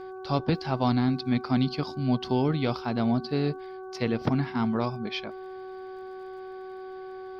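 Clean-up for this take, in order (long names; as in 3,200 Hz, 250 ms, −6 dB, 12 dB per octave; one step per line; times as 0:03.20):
click removal
hum removal 376.3 Hz, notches 4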